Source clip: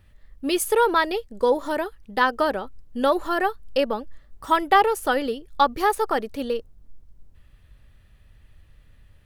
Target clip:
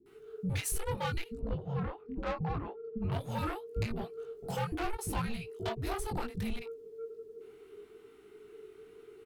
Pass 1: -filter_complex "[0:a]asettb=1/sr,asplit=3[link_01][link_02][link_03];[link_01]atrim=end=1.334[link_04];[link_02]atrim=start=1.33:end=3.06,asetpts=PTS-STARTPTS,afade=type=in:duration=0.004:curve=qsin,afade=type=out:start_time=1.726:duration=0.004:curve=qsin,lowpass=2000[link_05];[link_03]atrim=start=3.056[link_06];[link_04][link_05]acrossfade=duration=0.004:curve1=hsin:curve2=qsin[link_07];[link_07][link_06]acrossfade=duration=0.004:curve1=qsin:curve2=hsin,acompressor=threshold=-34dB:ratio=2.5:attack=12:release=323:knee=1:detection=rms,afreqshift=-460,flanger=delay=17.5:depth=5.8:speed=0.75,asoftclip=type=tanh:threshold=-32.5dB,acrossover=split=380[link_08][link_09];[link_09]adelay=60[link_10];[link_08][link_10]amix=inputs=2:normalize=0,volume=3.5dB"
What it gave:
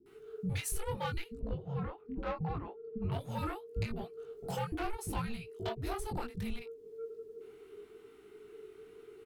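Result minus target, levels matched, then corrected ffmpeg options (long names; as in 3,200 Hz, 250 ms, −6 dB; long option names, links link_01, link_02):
downward compressor: peak gain reduction +4 dB
-filter_complex "[0:a]asettb=1/sr,asplit=3[link_01][link_02][link_03];[link_01]atrim=end=1.334[link_04];[link_02]atrim=start=1.33:end=3.06,asetpts=PTS-STARTPTS,afade=type=in:duration=0.004:curve=qsin,afade=type=out:start_time=1.726:duration=0.004:curve=qsin,lowpass=2000[link_05];[link_03]atrim=start=3.056[link_06];[link_04][link_05]acrossfade=duration=0.004:curve1=hsin:curve2=qsin[link_07];[link_07][link_06]acrossfade=duration=0.004:curve1=qsin:curve2=hsin,acompressor=threshold=-27dB:ratio=2.5:attack=12:release=323:knee=1:detection=rms,afreqshift=-460,flanger=delay=17.5:depth=5.8:speed=0.75,asoftclip=type=tanh:threshold=-32.5dB,acrossover=split=380[link_08][link_09];[link_09]adelay=60[link_10];[link_08][link_10]amix=inputs=2:normalize=0,volume=3.5dB"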